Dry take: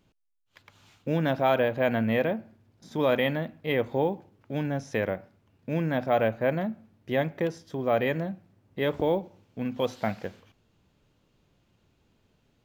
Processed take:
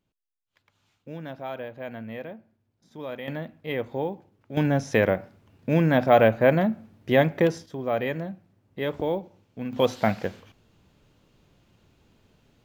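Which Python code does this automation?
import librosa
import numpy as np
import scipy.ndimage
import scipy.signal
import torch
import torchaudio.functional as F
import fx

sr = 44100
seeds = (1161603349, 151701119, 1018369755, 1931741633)

y = fx.gain(x, sr, db=fx.steps((0.0, -11.5), (3.28, -3.0), (4.57, 7.0), (7.66, -1.5), (9.73, 6.0)))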